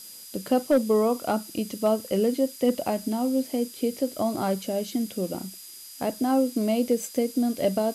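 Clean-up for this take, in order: clip repair -13.5 dBFS; band-stop 4.9 kHz, Q 30; noise print and reduce 26 dB

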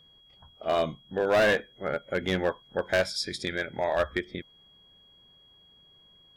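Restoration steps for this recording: clip repair -18 dBFS; band-stop 3.3 kHz, Q 30

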